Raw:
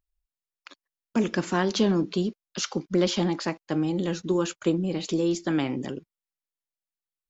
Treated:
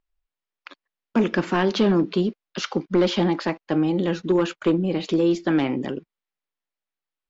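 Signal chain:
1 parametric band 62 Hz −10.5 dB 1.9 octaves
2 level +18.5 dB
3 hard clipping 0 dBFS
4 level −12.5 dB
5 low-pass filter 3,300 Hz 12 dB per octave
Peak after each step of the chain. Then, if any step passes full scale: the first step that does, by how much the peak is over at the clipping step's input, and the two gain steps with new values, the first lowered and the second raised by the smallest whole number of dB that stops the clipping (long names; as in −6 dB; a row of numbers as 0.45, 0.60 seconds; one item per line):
−10.5, +8.0, 0.0, −12.5, −12.0 dBFS
step 2, 8.0 dB
step 2 +10.5 dB, step 4 −4.5 dB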